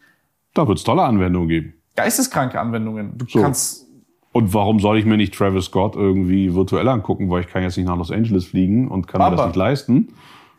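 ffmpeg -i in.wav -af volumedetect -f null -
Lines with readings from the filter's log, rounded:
mean_volume: -18.1 dB
max_volume: -3.3 dB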